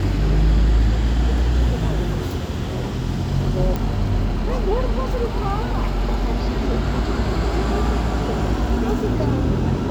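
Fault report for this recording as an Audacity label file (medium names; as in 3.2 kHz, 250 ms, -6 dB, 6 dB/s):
3.760000	3.760000	pop -11 dBFS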